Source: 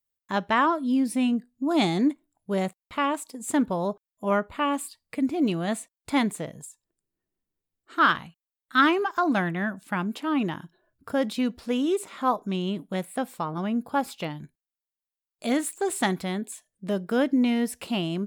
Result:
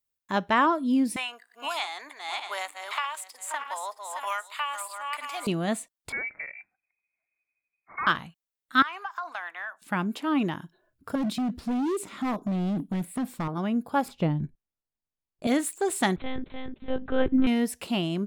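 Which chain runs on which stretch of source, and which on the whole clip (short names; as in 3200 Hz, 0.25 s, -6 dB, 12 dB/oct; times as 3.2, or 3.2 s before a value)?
1.16–5.47 regenerating reverse delay 0.31 s, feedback 48%, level -10 dB + HPF 890 Hz 24 dB/oct + three-band squash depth 100%
6.12–8.07 hard clip -16 dBFS + compressor 3:1, threshold -32 dBFS + inverted band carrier 2500 Hz
8.82–9.82 HPF 910 Hz 24 dB/oct + compressor 4:1, threshold -29 dBFS + tilt -2.5 dB/oct
11.15–13.48 resonant low shelf 370 Hz +7.5 dB, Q 1.5 + compressor 4:1, threshold -20 dBFS + overloaded stage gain 25 dB
14.08–15.47 block floating point 7-bit + tilt -4 dB/oct
16.16–17.47 feedback echo 0.301 s, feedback 25%, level -4.5 dB + monotone LPC vocoder at 8 kHz 260 Hz
whole clip: dry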